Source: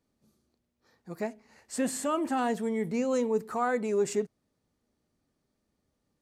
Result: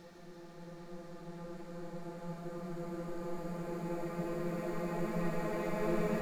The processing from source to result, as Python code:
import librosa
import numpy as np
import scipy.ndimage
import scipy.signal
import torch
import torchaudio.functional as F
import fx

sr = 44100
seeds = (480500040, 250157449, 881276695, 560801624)

y = np.maximum(x, 0.0)
y = fx.paulstretch(y, sr, seeds[0], factor=36.0, window_s=0.5, from_s=0.92)
y = F.gain(torch.from_numpy(y), 9.5).numpy()